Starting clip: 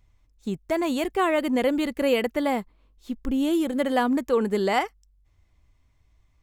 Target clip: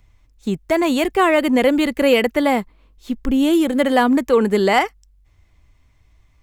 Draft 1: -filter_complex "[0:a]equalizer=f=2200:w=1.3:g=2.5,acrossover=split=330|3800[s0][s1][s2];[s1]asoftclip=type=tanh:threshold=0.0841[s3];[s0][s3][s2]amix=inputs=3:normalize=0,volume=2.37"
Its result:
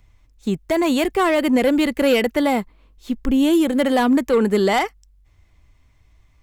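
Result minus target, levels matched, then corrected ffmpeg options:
saturation: distortion +15 dB
-filter_complex "[0:a]equalizer=f=2200:w=1.3:g=2.5,acrossover=split=330|3800[s0][s1][s2];[s1]asoftclip=type=tanh:threshold=0.299[s3];[s0][s3][s2]amix=inputs=3:normalize=0,volume=2.37"

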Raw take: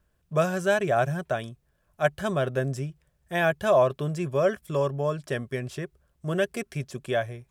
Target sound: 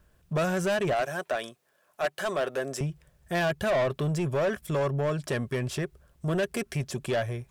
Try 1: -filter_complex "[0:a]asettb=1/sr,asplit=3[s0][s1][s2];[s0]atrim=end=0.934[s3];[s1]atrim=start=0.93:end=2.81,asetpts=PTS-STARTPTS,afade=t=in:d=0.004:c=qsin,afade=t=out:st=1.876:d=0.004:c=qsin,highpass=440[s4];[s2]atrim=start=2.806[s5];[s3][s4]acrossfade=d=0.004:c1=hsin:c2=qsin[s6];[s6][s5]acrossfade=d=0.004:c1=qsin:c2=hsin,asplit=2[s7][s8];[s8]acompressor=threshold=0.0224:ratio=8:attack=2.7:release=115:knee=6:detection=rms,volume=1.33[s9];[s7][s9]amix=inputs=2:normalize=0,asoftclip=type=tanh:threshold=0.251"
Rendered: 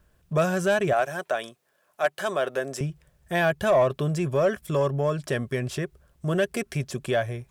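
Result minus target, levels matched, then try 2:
saturation: distortion -12 dB
-filter_complex "[0:a]asettb=1/sr,asplit=3[s0][s1][s2];[s0]atrim=end=0.934[s3];[s1]atrim=start=0.93:end=2.81,asetpts=PTS-STARTPTS,afade=t=in:d=0.004:c=qsin,afade=t=out:st=1.876:d=0.004:c=qsin,highpass=440[s4];[s2]atrim=start=2.806[s5];[s3][s4]acrossfade=d=0.004:c1=hsin:c2=qsin[s6];[s6][s5]acrossfade=d=0.004:c1=qsin:c2=hsin,asplit=2[s7][s8];[s8]acompressor=threshold=0.0224:ratio=8:attack=2.7:release=115:knee=6:detection=rms,volume=1.33[s9];[s7][s9]amix=inputs=2:normalize=0,asoftclip=type=tanh:threshold=0.0794"

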